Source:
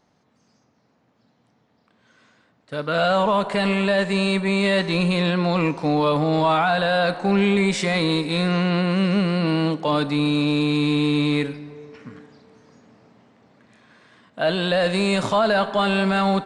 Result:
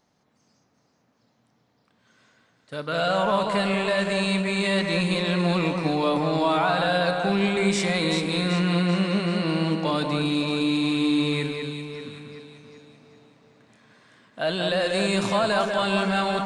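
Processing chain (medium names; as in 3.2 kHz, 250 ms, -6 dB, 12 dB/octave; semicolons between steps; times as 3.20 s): treble shelf 4.3 kHz +7 dB; echo whose repeats swap between lows and highs 192 ms, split 2.4 kHz, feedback 68%, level -4 dB; trim -5 dB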